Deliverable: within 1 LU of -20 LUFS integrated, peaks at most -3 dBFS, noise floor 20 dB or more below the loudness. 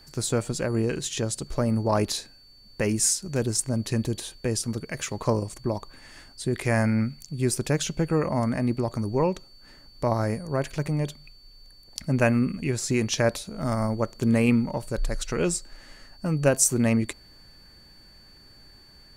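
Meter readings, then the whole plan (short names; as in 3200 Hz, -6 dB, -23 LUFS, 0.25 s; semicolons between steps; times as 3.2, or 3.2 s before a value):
steady tone 4500 Hz; tone level -52 dBFS; loudness -26.0 LUFS; peak -8.0 dBFS; loudness target -20.0 LUFS
-> notch 4500 Hz, Q 30; gain +6 dB; limiter -3 dBFS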